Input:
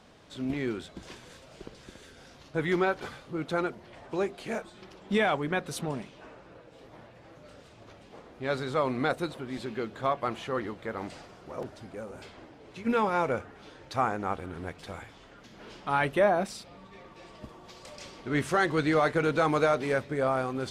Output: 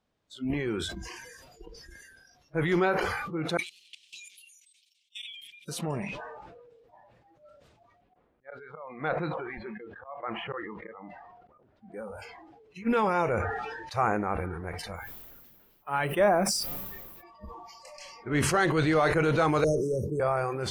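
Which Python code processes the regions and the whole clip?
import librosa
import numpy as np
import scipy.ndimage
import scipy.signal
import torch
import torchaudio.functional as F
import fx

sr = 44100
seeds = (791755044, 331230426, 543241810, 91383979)

y = fx.chain(x, sr, fx.ellip_highpass(hz=2800.0, order=4, stop_db=50),
    fx.level_steps(step_db=20),
    fx.echo_warbled(ms=95, feedback_pct=70, rate_hz=2.8, cents=116, wet_db=-16.0), at=(3.57, 5.68))
y = fx.chain(y, sr, fx.lowpass(hz=2700.0, slope=12),
    fx.auto_swell(attack_ms=383.0),
    fx.dynamic_eq(hz=330.0, q=1.2, threshold_db=-44.0, ratio=4.0, max_db=-4), at=(8.01, 11.92))
y = fx.dmg_noise_colour(y, sr, seeds[0], colour='pink', level_db=-54.0, at=(14.95, 17.22), fade=0.02)
y = fx.upward_expand(y, sr, threshold_db=-41.0, expansion=1.5, at=(14.95, 17.22), fade=0.02)
y = fx.chain(y, sr, fx.ellip_bandstop(low_hz=480.0, high_hz=5700.0, order=3, stop_db=40),
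    fx.peak_eq(hz=2400.0, db=-9.0, octaves=0.36),
    fx.band_squash(depth_pct=40), at=(19.64, 20.2))
y = fx.noise_reduce_blind(y, sr, reduce_db=23)
y = fx.low_shelf(y, sr, hz=95.0, db=6.0)
y = fx.sustainer(y, sr, db_per_s=32.0)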